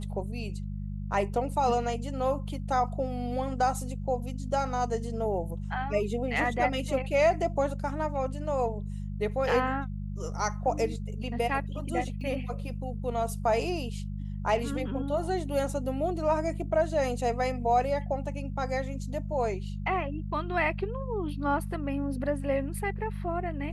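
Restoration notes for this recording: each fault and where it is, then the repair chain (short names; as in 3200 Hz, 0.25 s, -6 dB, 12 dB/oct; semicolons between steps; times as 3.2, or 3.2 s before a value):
hum 50 Hz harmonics 4 -35 dBFS
12.21 gap 2.6 ms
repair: de-hum 50 Hz, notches 4; interpolate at 12.21, 2.6 ms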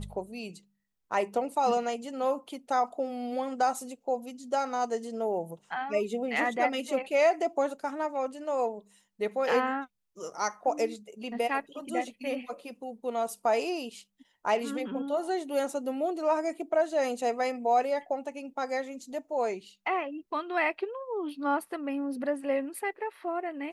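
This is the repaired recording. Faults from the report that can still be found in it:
none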